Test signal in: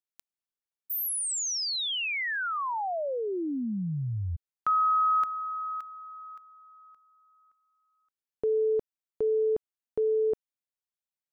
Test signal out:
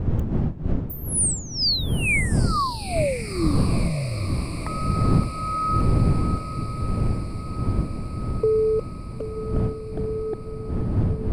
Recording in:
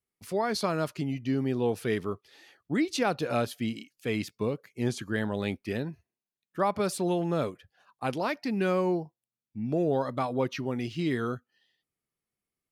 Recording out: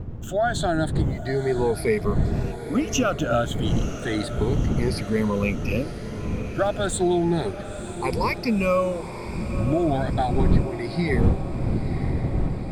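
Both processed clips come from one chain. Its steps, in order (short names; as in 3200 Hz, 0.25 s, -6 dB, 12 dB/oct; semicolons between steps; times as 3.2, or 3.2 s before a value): moving spectral ripple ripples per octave 0.87, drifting +0.32 Hz, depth 24 dB; wind noise 150 Hz -21 dBFS; compressor 3:1, threshold -19 dBFS; diffused feedback echo 0.975 s, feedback 68%, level -12 dB; gain +1 dB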